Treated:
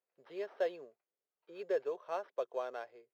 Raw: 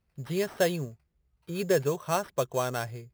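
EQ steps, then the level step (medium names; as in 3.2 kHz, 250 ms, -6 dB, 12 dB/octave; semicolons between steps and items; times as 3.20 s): ladder high-pass 390 Hz, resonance 40%; distance through air 270 m; treble shelf 6.4 kHz +5 dB; -3.5 dB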